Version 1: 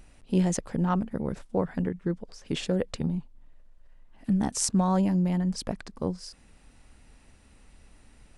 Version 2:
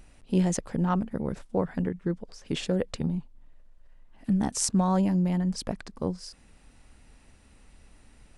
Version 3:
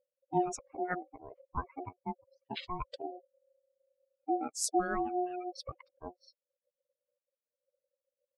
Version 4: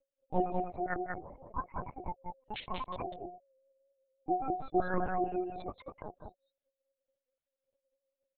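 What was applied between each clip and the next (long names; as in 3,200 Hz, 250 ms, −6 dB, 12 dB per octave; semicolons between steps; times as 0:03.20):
no processing that can be heard
spectral dynamics exaggerated over time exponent 3; ring modulation 540 Hz
single-tap delay 191 ms −3.5 dB; linear-prediction vocoder at 8 kHz pitch kept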